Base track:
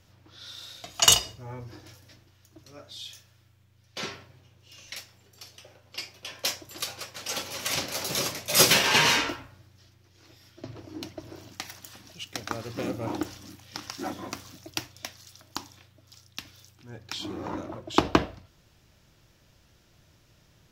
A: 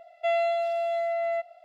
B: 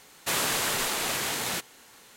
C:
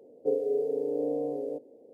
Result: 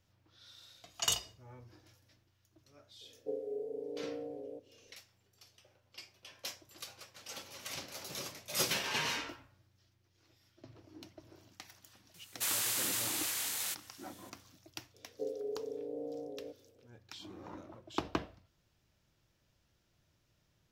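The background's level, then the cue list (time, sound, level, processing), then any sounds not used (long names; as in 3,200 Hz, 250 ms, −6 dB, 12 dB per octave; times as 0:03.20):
base track −14 dB
0:03.01: mix in C −11.5 dB
0:12.14: mix in B −14.5 dB + spectral tilt +3.5 dB per octave
0:14.94: mix in C −11.5 dB
not used: A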